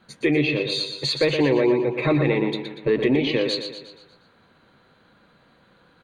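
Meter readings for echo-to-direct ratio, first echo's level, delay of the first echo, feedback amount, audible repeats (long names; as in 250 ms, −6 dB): −6.5 dB, −7.5 dB, 119 ms, 49%, 5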